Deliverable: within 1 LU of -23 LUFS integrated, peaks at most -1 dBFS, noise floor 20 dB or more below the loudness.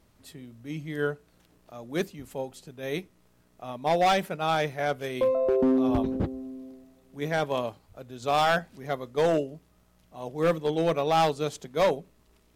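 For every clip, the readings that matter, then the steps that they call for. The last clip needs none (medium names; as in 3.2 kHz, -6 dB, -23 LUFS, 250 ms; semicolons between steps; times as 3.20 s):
clipped samples 1.2%; clipping level -17.5 dBFS; loudness -27.5 LUFS; peak level -17.5 dBFS; loudness target -23.0 LUFS
-> clip repair -17.5 dBFS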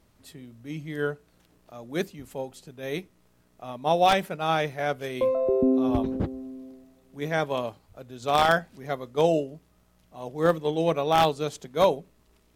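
clipped samples 0.0%; loudness -26.0 LUFS; peak level -8.5 dBFS; loudness target -23.0 LUFS
-> trim +3 dB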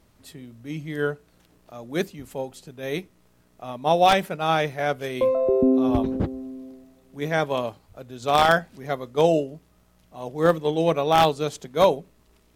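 loudness -23.0 LUFS; peak level -5.5 dBFS; noise floor -60 dBFS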